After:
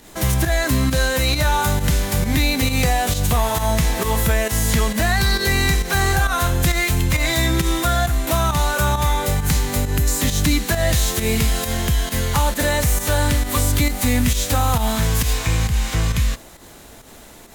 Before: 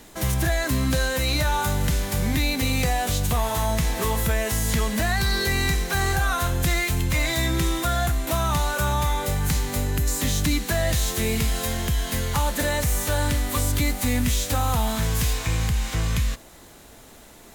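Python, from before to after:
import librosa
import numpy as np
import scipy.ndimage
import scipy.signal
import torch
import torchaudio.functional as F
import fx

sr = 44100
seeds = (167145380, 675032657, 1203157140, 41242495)

y = fx.volume_shaper(x, sr, bpm=134, per_beat=1, depth_db=-9, release_ms=115.0, shape='fast start')
y = F.gain(torch.from_numpy(y), 5.0).numpy()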